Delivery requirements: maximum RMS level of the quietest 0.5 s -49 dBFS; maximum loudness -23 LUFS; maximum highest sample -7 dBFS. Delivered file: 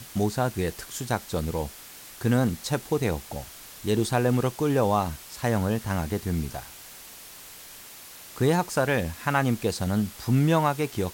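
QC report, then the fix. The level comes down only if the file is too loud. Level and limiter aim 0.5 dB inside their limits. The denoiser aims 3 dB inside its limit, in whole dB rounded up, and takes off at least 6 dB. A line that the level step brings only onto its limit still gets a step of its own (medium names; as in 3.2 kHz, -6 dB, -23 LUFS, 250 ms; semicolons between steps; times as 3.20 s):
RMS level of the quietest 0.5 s -45 dBFS: fail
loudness -26.5 LUFS: pass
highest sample -10.0 dBFS: pass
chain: noise reduction 7 dB, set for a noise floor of -45 dBFS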